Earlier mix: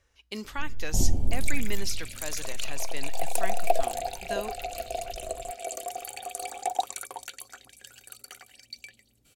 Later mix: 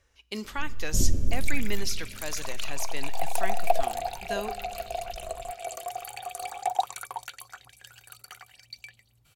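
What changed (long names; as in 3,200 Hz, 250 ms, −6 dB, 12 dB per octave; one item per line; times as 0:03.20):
speech: send on
first sound: add Butterworth band-reject 800 Hz, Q 2.1
second sound: add octave-band graphic EQ 125/250/500/1,000/8,000 Hz +9/−11/−5/+8/−5 dB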